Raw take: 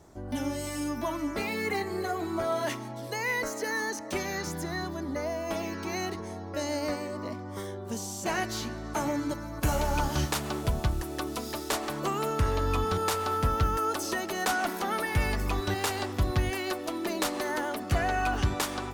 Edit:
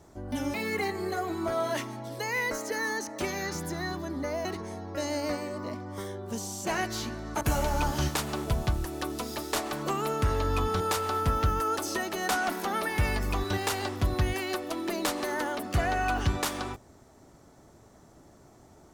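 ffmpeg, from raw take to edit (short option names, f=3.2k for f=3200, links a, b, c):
-filter_complex "[0:a]asplit=4[a][b][c][d];[a]atrim=end=0.542[e];[b]atrim=start=1.458:end=5.372[f];[c]atrim=start=6.038:end=9.002[g];[d]atrim=start=9.578[h];[e][f]acrossfade=d=0.004:c1=hsin:c2=hsin[i];[i][g]acrossfade=d=0.004:c1=hsin:c2=hsin[j];[j][h]acrossfade=d=0.004:c1=hsin:c2=hsin"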